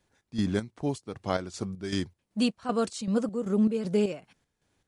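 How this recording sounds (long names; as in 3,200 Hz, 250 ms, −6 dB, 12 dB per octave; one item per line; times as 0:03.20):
chopped level 2.6 Hz, depth 60%, duty 55%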